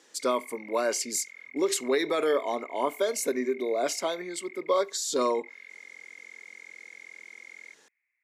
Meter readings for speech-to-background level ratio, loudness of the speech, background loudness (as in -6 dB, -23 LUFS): 17.5 dB, -28.5 LUFS, -46.0 LUFS